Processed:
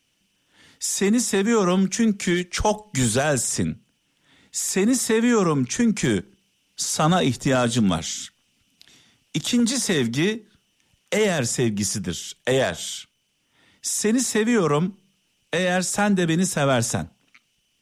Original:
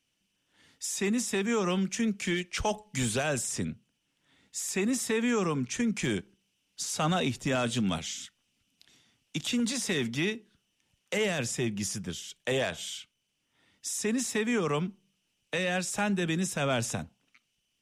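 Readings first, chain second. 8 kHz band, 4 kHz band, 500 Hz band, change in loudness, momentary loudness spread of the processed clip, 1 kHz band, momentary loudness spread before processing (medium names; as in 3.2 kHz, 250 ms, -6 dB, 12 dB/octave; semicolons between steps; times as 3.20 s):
+9.0 dB, +6.5 dB, +9.0 dB, +8.5 dB, 10 LU, +8.5 dB, 10 LU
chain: dynamic bell 2.6 kHz, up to -7 dB, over -49 dBFS, Q 2.2; trim +9 dB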